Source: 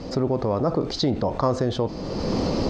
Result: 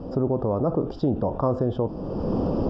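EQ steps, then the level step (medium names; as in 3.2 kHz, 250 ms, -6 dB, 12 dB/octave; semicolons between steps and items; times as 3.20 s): boxcar filter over 21 samples; 0.0 dB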